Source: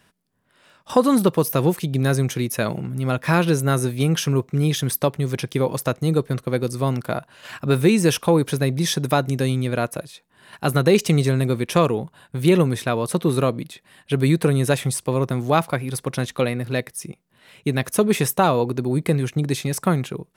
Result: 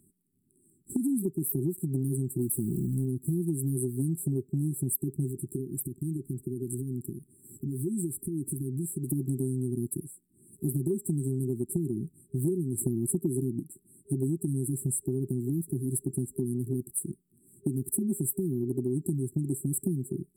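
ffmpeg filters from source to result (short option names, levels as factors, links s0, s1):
-filter_complex "[0:a]asettb=1/sr,asplit=3[s0][s1][s2];[s0]atrim=end=2.414[s3];[s1]atrim=start=2.41:end=3.06,asetpts=PTS-STARTPTS,afade=t=in:d=0.004:c=qsin,afade=t=out:st=0.646:d=0.004:c=qsin,aeval=exprs='val(0)+0.5*0.0355*sgn(val(0))':c=same[s4];[s2]atrim=start=3.056[s5];[s3][s4]acrossfade=d=0.004:c1=hsin:c2=qsin[s6];[s6][s5]acrossfade=d=0.004:c1=qsin:c2=hsin,asettb=1/sr,asplit=3[s7][s8][s9];[s7]atrim=end=5.314[s10];[s8]atrim=start=5.31:end=9.11,asetpts=PTS-STARTPTS,afade=t=in:d=0.004:c=qsin,afade=t=out:st=3.796:d=0.004:c=qsin,acompressor=threshold=0.0447:ratio=5:attack=3.2:release=140:knee=1:detection=peak[s11];[s9]atrim=start=9.106[s12];[s10][s11]acrossfade=d=0.004:c1=hsin:c2=qsin[s13];[s13][s12]acrossfade=d=0.004:c1=qsin:c2=hsin,asplit=3[s14][s15][s16];[s14]atrim=end=12.782[s17];[s15]atrim=start=12.778:end=13.602,asetpts=PTS-STARTPTS,volume=2.99[s18];[s16]atrim=start=13.598[s19];[s17][s18]acrossfade=d=0.004:c1=hsin:c2=hsin[s20];[s20][s19]acrossfade=d=0.004:c1=hsin:c2=hsin,afftfilt=real='re*(1-between(b*sr/4096,400,7500))':imag='im*(1-between(b*sr/4096,400,7500))':win_size=4096:overlap=0.75,lowshelf=f=200:g=-7,acompressor=threshold=0.0398:ratio=10,volume=1.33"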